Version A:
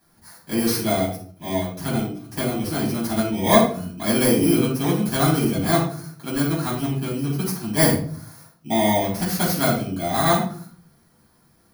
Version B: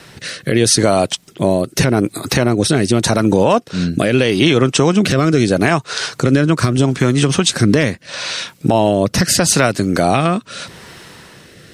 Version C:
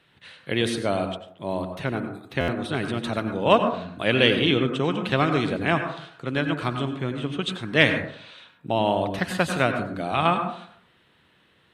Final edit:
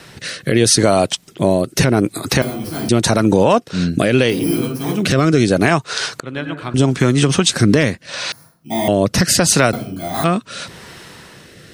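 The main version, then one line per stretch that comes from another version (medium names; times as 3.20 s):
B
2.42–2.89 s: from A
4.36–4.99 s: from A, crossfade 0.16 s
6.20–6.74 s: from C
8.32–8.88 s: from A
9.73–10.24 s: from A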